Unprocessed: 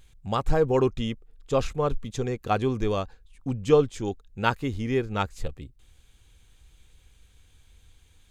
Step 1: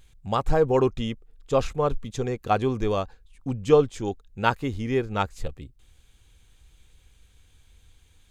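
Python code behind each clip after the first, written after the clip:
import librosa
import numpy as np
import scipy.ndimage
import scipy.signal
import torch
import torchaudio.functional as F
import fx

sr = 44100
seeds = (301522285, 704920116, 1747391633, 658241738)

y = fx.dynamic_eq(x, sr, hz=760.0, q=0.92, threshold_db=-35.0, ratio=4.0, max_db=3)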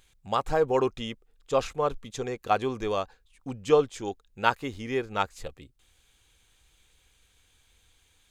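y = fx.low_shelf(x, sr, hz=270.0, db=-12.0)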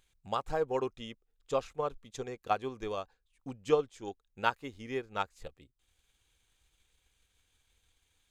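y = fx.transient(x, sr, attack_db=4, sustain_db=-4)
y = F.gain(torch.from_numpy(y), -9.0).numpy()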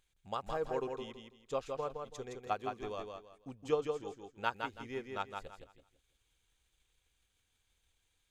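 y = fx.echo_feedback(x, sr, ms=165, feedback_pct=27, wet_db=-5.0)
y = F.gain(torch.from_numpy(y), -5.5).numpy()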